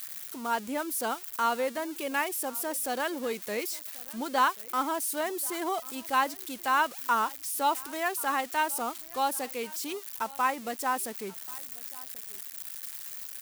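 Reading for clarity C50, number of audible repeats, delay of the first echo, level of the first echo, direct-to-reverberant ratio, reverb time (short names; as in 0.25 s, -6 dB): none, 1, 1.085 s, -22.5 dB, none, none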